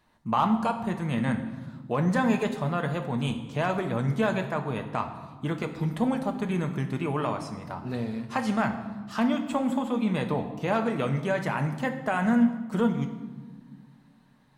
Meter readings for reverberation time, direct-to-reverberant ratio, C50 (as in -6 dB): 1.5 s, 4.5 dB, 9.5 dB